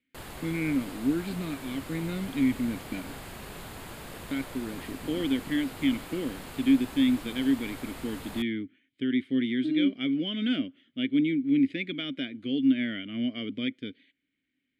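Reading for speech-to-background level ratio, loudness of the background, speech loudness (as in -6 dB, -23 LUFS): 12.5 dB, -42.0 LUFS, -29.5 LUFS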